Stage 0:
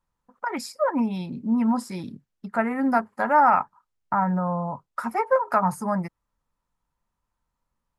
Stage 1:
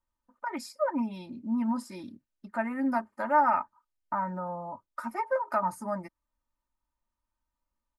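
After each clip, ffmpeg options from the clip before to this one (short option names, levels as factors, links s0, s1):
-af "aecho=1:1:3.3:0.72,volume=0.355"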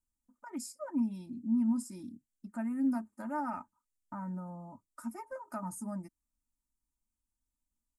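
-af "equalizer=f=250:t=o:w=1:g=5,equalizer=f=500:t=o:w=1:g=-11,equalizer=f=1000:t=o:w=1:g=-8,equalizer=f=2000:t=o:w=1:g=-11,equalizer=f=4000:t=o:w=1:g=-10,equalizer=f=8000:t=o:w=1:g=10,volume=0.75"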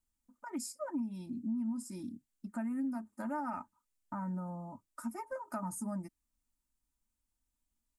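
-af "acompressor=threshold=0.0158:ratio=6,volume=1.33"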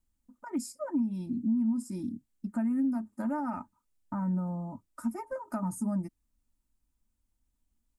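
-af "lowshelf=f=470:g=9.5"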